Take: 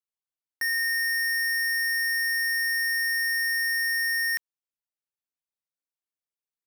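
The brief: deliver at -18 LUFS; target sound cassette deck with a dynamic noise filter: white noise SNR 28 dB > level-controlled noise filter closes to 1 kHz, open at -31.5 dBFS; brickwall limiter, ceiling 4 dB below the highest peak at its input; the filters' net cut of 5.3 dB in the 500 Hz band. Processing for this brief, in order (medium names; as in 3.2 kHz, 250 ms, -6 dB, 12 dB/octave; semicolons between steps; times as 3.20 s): peaking EQ 500 Hz -7 dB; peak limiter -28 dBFS; white noise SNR 28 dB; level-controlled noise filter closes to 1 kHz, open at -31.5 dBFS; trim +10 dB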